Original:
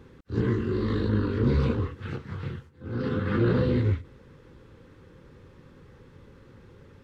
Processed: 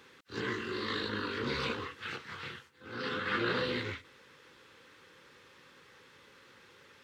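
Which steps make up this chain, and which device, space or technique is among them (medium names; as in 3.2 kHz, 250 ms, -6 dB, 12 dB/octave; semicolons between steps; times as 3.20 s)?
filter by subtraction (in parallel: low-pass 2.9 kHz 12 dB/octave + polarity flip); on the sum: trim +5.5 dB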